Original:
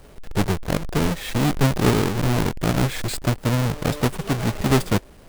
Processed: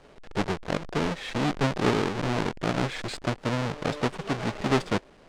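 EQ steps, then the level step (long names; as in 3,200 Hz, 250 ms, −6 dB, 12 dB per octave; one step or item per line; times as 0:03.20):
high-frequency loss of the air 97 metres
parametric band 66 Hz −4.5 dB 1.1 octaves
low-shelf EQ 170 Hz −10.5 dB
−2.0 dB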